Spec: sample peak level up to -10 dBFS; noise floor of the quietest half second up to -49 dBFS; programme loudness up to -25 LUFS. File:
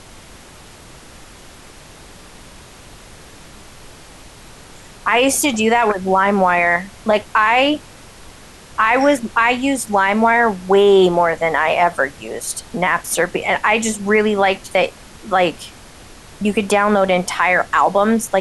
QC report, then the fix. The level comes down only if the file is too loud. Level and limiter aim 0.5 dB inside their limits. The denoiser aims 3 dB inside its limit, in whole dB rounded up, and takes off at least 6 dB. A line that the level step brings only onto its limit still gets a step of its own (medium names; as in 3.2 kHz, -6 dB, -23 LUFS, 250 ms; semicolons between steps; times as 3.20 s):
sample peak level -4.0 dBFS: fail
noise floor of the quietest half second -41 dBFS: fail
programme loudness -16.0 LUFS: fail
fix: trim -9.5 dB